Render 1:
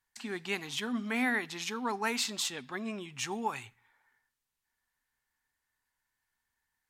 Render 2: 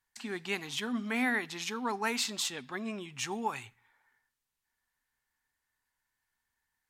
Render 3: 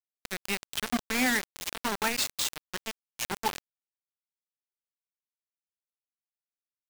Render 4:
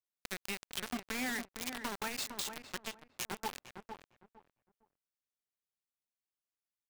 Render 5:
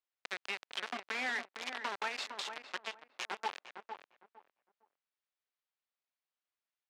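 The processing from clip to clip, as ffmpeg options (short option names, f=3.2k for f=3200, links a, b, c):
-af anull
-af "acrusher=bits=4:mix=0:aa=0.000001,volume=2.5dB"
-filter_complex "[0:a]acompressor=threshold=-31dB:ratio=6,asplit=2[a][b];[b]adelay=457,lowpass=f=1.4k:p=1,volume=-6.5dB,asplit=2[c][d];[d]adelay=457,lowpass=f=1.4k:p=1,volume=0.23,asplit=2[e][f];[f]adelay=457,lowpass=f=1.4k:p=1,volume=0.23[g];[a][c][e][g]amix=inputs=4:normalize=0,volume=-3dB"
-af "highpass=530,lowpass=3.7k,volume=3.5dB"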